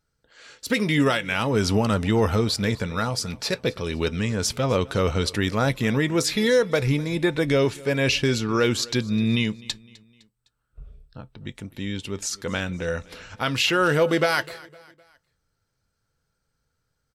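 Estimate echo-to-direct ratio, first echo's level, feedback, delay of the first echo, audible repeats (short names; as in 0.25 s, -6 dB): -21.0 dB, -22.0 dB, 46%, 0.255 s, 2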